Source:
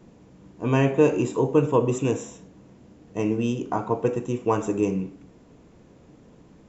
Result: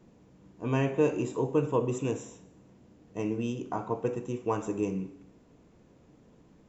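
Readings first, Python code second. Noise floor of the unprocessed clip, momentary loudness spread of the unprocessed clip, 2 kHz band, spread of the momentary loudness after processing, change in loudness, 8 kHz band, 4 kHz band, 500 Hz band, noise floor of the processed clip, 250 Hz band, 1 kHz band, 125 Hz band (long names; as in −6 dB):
−53 dBFS, 11 LU, −7.0 dB, 10 LU, −7.0 dB, can't be measured, −7.0 dB, −7.0 dB, −60 dBFS, −7.0 dB, −7.0 dB, −7.0 dB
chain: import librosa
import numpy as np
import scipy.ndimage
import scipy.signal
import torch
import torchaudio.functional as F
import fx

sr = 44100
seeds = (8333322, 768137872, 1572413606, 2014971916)

y = fx.rev_schroeder(x, sr, rt60_s=0.95, comb_ms=31, drr_db=17.0)
y = F.gain(torch.from_numpy(y), -7.0).numpy()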